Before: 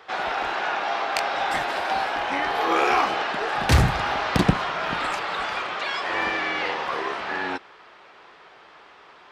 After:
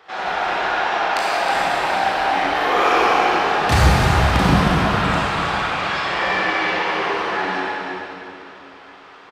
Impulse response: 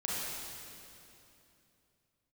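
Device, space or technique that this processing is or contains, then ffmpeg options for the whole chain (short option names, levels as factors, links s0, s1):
cave: -filter_complex "[0:a]aecho=1:1:316:0.316[s0];[1:a]atrim=start_sample=2205[s1];[s0][s1]afir=irnorm=-1:irlink=0"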